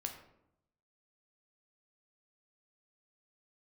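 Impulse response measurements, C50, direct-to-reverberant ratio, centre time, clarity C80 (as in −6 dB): 8.0 dB, 3.5 dB, 20 ms, 10.5 dB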